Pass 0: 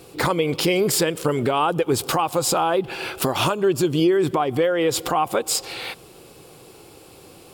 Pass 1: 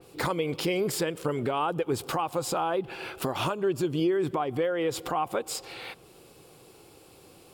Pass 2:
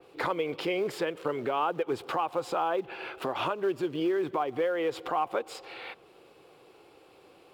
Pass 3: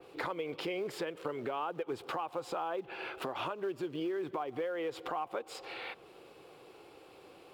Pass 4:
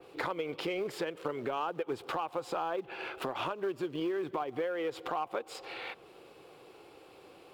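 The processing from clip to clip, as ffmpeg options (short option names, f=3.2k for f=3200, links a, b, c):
-af "adynamicequalizer=threshold=0.01:dfrequency=3200:dqfactor=0.7:tfrequency=3200:tqfactor=0.7:attack=5:release=100:ratio=0.375:range=2.5:mode=cutabove:tftype=highshelf,volume=-7.5dB"
-filter_complex "[0:a]acrusher=bits=6:mode=log:mix=0:aa=0.000001,acrossover=split=300 3700:gain=0.251 1 0.158[a][b][c];[a][b][c]amix=inputs=3:normalize=0"
-af "acompressor=threshold=-41dB:ratio=2,volume=1dB"
-af "aeval=exprs='0.0708*(cos(1*acos(clip(val(0)/0.0708,-1,1)))-cos(1*PI/2))+0.002*(cos(7*acos(clip(val(0)/0.0708,-1,1)))-cos(7*PI/2))':c=same,volume=2.5dB"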